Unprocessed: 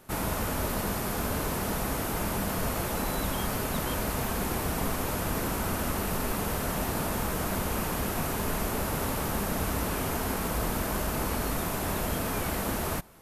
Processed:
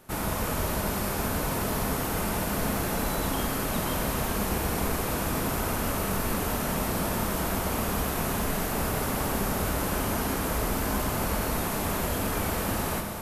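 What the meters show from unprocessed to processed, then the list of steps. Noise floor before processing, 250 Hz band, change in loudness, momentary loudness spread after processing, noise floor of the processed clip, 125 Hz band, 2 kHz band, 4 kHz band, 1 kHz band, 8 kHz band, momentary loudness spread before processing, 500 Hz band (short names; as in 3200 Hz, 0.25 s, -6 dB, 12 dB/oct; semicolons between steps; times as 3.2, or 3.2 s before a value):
-32 dBFS, +2.0 dB, +2.0 dB, 1 LU, -30 dBFS, +1.5 dB, +2.0 dB, +2.0 dB, +2.0 dB, +2.0 dB, 0 LU, +2.0 dB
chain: Schroeder reverb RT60 3.9 s, combs from 30 ms, DRR 2.5 dB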